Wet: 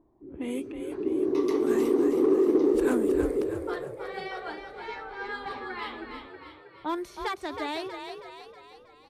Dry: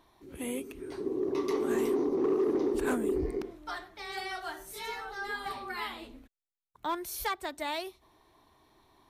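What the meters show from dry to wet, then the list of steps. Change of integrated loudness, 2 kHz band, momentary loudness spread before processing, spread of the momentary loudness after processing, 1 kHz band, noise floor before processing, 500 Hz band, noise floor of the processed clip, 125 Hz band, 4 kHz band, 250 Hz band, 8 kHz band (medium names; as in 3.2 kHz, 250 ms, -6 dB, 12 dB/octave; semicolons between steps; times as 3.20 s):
+5.0 dB, +1.0 dB, 12 LU, 18 LU, +1.5 dB, -77 dBFS, +5.5 dB, -54 dBFS, +2.0 dB, -1.0 dB, +6.5 dB, -4.0 dB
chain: level-controlled noise filter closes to 510 Hz, open at -29 dBFS; peaking EQ 310 Hz +7.5 dB 0.68 oct; frequency-shifting echo 319 ms, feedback 52%, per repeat +39 Hz, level -7 dB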